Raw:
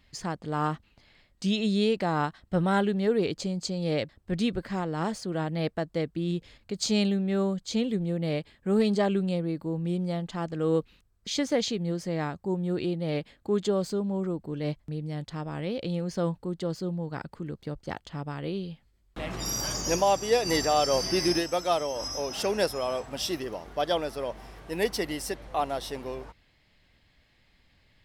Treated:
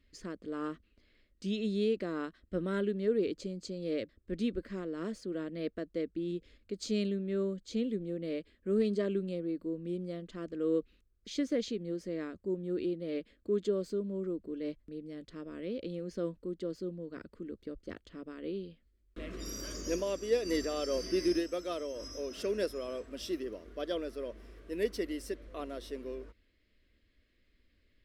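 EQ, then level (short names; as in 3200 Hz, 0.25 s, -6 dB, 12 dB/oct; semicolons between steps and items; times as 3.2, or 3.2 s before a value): high shelf 2000 Hz -11 dB; fixed phaser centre 340 Hz, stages 4; -2.5 dB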